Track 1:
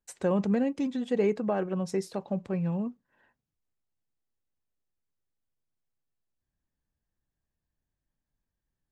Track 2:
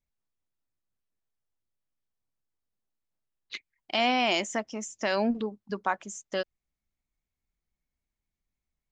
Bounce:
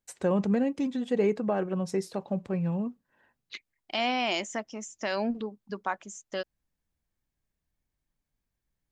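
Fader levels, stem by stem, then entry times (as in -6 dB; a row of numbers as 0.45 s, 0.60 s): +0.5 dB, -3.0 dB; 0.00 s, 0.00 s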